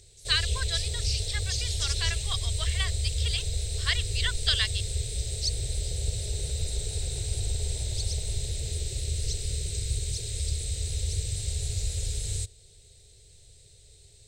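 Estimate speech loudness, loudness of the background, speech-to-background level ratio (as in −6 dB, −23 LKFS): −31.0 LKFS, −31.0 LKFS, 0.0 dB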